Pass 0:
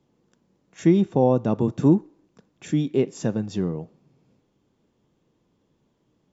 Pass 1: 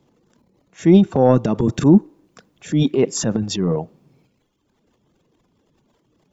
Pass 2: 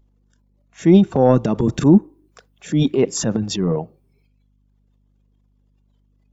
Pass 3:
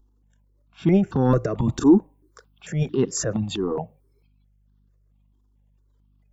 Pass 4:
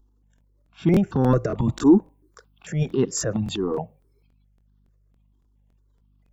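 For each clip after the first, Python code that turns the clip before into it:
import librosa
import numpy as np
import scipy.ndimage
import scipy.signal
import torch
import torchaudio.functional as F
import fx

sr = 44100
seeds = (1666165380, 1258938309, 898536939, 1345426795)

y1 = fx.dereverb_blind(x, sr, rt60_s=1.2)
y1 = fx.transient(y1, sr, attack_db=-5, sustain_db=11)
y1 = y1 * 10.0 ** (6.5 / 20.0)
y2 = fx.add_hum(y1, sr, base_hz=50, snr_db=27)
y2 = fx.noise_reduce_blind(y2, sr, reduce_db=14)
y3 = fx.phaser_held(y2, sr, hz=4.5, low_hz=590.0, high_hz=2300.0)
y4 = fx.buffer_crackle(y3, sr, first_s=0.36, period_s=0.28, block=1024, kind='repeat')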